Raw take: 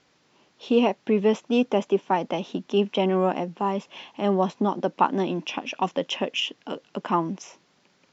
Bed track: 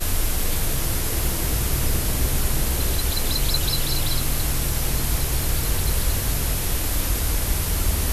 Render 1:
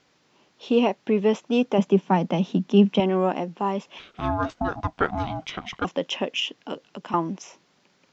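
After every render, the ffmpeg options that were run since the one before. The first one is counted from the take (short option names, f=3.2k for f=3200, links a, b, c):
-filter_complex "[0:a]asettb=1/sr,asplit=3[a][b][c];[a]atrim=end=1.784[d];[b]atrim=start=1.78:end=3,asetpts=PTS-STARTPTS,afade=t=in:d=0.004:c=qsin,afade=t=out:st=1.216:d=0.004:c=qsin,equalizer=f=180:t=o:w=0.77:g=12.5[e];[c]atrim=start=2.996[f];[d][e]acrossfade=d=0.004:c1=hsin:c2=qsin[g];[g][f]acrossfade=d=0.004:c1=qsin:c2=hsin,asettb=1/sr,asplit=3[h][i][j];[h]atrim=end=3.994[k];[i]atrim=start=3.99:end=5.85,asetpts=PTS-STARTPTS,afade=t=in:d=0.004:c=qsin,afade=t=out:st=1.856:d=0.004:c=qsin,aeval=exprs='val(0)*sin(2*PI*470*n/s)':c=same[l];[j]atrim=start=5.846[m];[k][l]acrossfade=d=0.004:c1=hsin:c2=qsin[n];[n][m]acrossfade=d=0.004:c1=qsin:c2=hsin,asettb=1/sr,asplit=3[o][p][q];[o]atrim=end=6.744[r];[p]atrim=start=6.74:end=7.14,asetpts=PTS-STARTPTS,afade=t=in:d=0.004:c=qsin,afade=t=out:st=0.396:d=0.004:c=qsin,acrossover=split=160|3000[s][t][u];[t]acompressor=threshold=-38dB:ratio=2.5:attack=3.2:release=140:knee=2.83:detection=peak[v];[s][v][u]amix=inputs=3:normalize=0[w];[q]atrim=start=7.136[x];[r][w]acrossfade=d=0.004:c1=hsin:c2=qsin[y];[y][x]acrossfade=d=0.004:c1=qsin:c2=hsin"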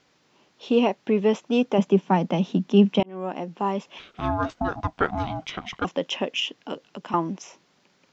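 -filter_complex "[0:a]asplit=2[a][b];[a]atrim=end=3.03,asetpts=PTS-STARTPTS,afade=t=out:st=3.026:d=0.004:c=hsin[c];[b]atrim=start=3.03,asetpts=PTS-STARTPTS,afade=t=in:d=0.56[d];[c][d]concat=n=2:v=0:a=1"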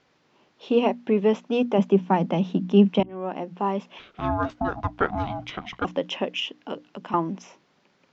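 -af "aemphasis=mode=reproduction:type=50fm,bandreject=f=60:t=h:w=6,bandreject=f=120:t=h:w=6,bandreject=f=180:t=h:w=6,bandreject=f=240:t=h:w=6,bandreject=f=300:t=h:w=6"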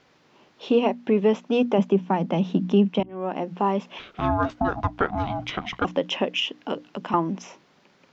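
-filter_complex "[0:a]asplit=2[a][b];[b]acompressor=threshold=-29dB:ratio=6,volume=-2dB[c];[a][c]amix=inputs=2:normalize=0,alimiter=limit=-9.5dB:level=0:latency=1:release=493"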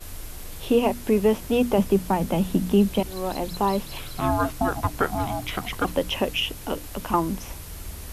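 -filter_complex "[1:a]volume=-15dB[a];[0:a][a]amix=inputs=2:normalize=0"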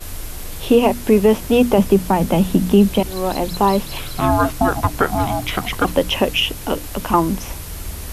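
-af "volume=7.5dB,alimiter=limit=-3dB:level=0:latency=1"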